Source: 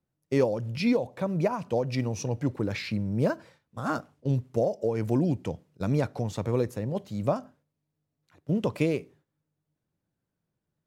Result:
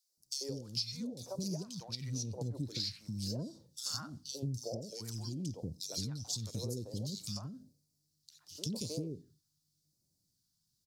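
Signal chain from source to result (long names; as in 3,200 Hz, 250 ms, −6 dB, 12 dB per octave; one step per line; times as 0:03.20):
high shelf with overshoot 3,300 Hz +13.5 dB, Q 3, from 0:01.75 +7 dB, from 0:02.80 +13 dB
three-band delay without the direct sound highs, mids, lows 90/170 ms, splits 430/2,200 Hz
downward compressor 10 to 1, threshold −33 dBFS, peak gain reduction 18 dB
all-pass phaser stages 2, 0.92 Hz, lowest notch 480–1,800 Hz
level −1.5 dB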